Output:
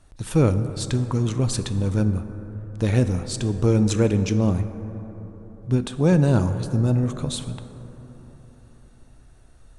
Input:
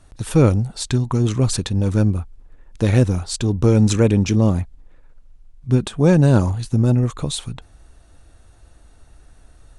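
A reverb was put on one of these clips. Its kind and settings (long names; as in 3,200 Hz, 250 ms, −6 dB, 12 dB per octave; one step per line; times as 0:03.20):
dense smooth reverb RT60 4.1 s, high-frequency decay 0.3×, DRR 9.5 dB
level −4.5 dB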